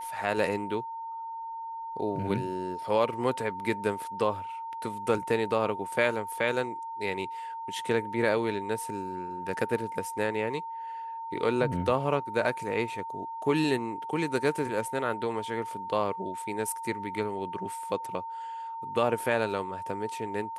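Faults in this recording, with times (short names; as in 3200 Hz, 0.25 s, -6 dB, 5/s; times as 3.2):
tone 910 Hz -35 dBFS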